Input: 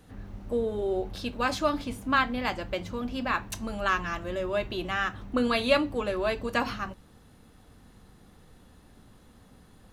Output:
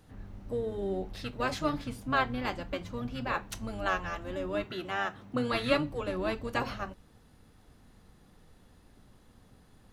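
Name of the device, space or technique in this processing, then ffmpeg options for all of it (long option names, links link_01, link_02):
octave pedal: -filter_complex "[0:a]asplit=2[link_01][link_02];[link_02]asetrate=22050,aresample=44100,atempo=2,volume=-5dB[link_03];[link_01][link_03]amix=inputs=2:normalize=0,asettb=1/sr,asplit=3[link_04][link_05][link_06];[link_04]atrim=end=4.644[link_07];[link_05]atrim=start=4.64:end=5.53,asetpts=PTS-STARTPTS,afade=type=in:duration=0.004:curve=qsin,afade=type=out:start_time=0.886:duration=0.004:curve=qsin,highpass=130[link_08];[link_06]atrim=start=5.526[link_09];[link_07][link_08]acrossfade=duration=0.004:curve1=hsin:curve2=qsin[link_10];[link_10][link_09]acrossfade=duration=0.004:curve1=qsin:curve2=hsin,volume=-5dB"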